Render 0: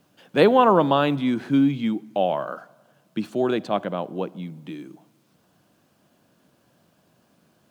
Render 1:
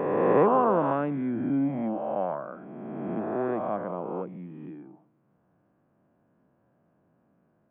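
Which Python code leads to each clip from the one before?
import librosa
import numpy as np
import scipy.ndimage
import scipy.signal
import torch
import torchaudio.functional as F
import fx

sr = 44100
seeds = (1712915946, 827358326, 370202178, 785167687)

y = fx.spec_swells(x, sr, rise_s=2.2)
y = scipy.ndimage.gaussian_filter1d(y, 5.1, mode='constant')
y = F.gain(torch.from_numpy(y), -8.0).numpy()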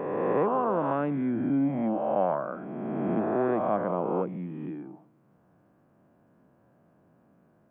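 y = fx.rider(x, sr, range_db=5, speed_s=0.5)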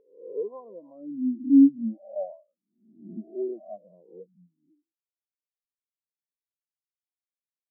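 y = fx.high_shelf(x, sr, hz=2400.0, db=-10.5)
y = fx.spectral_expand(y, sr, expansion=4.0)
y = F.gain(torch.from_numpy(y), 5.5).numpy()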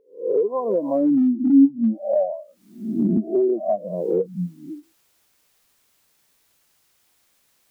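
y = fx.recorder_agc(x, sr, target_db=-15.5, rise_db_per_s=55.0, max_gain_db=30)
y = fx.end_taper(y, sr, db_per_s=420.0)
y = F.gain(torch.from_numpy(y), 2.0).numpy()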